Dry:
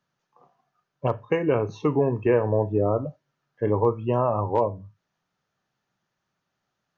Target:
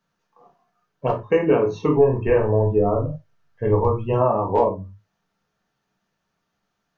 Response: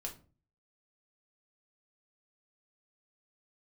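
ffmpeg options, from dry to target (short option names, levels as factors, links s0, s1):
-filter_complex "[0:a]asplit=3[s0][s1][s2];[s0]afade=t=out:st=1.94:d=0.02[s3];[s1]asubboost=boost=10:cutoff=87,afade=t=in:st=1.94:d=0.02,afade=t=out:st=4.12:d=0.02[s4];[s2]afade=t=in:st=4.12:d=0.02[s5];[s3][s4][s5]amix=inputs=3:normalize=0[s6];[1:a]atrim=start_sample=2205,afade=t=out:st=0.15:d=0.01,atrim=end_sample=7056[s7];[s6][s7]afir=irnorm=-1:irlink=0,volume=1.88"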